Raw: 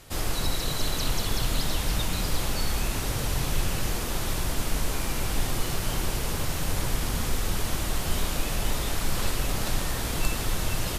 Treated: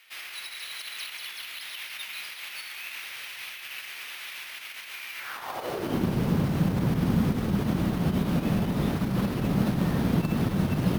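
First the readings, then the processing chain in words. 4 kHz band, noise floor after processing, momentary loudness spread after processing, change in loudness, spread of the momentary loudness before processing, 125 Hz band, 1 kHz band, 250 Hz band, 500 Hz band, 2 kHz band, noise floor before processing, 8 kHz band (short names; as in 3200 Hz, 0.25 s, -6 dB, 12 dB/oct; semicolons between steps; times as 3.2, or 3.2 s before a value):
-5.5 dB, -42 dBFS, 11 LU, 0.0 dB, 2 LU, +3.0 dB, -2.5 dB, +8.5 dB, +0.5 dB, -1.5 dB, -30 dBFS, -13.0 dB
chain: RIAA curve playback; limiter -4 dBFS, peak gain reduction 9 dB; high-pass sweep 2300 Hz -> 190 Hz, 5.14–6.07; careless resampling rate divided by 3×, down filtered, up hold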